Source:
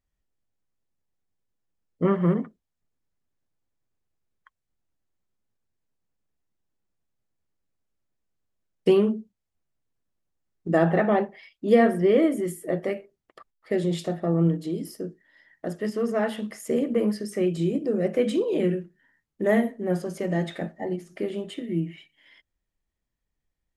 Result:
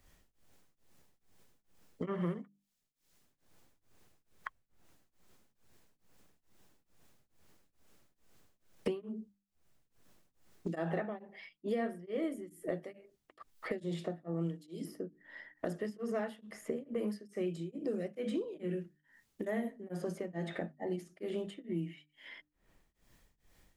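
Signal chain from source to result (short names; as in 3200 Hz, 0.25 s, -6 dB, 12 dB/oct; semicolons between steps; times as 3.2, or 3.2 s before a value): tremolo triangle 2.3 Hz, depth 100%; notches 50/100/150/200/250/300 Hz; three-band squash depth 100%; gain -8 dB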